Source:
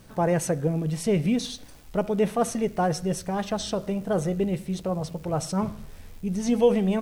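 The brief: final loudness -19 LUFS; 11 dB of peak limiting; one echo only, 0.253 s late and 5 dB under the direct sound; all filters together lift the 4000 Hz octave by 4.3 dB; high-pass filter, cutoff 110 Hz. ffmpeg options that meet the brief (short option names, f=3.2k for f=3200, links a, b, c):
-af "highpass=110,equalizer=f=4k:t=o:g=5.5,alimiter=limit=-20dB:level=0:latency=1,aecho=1:1:253:0.562,volume=9.5dB"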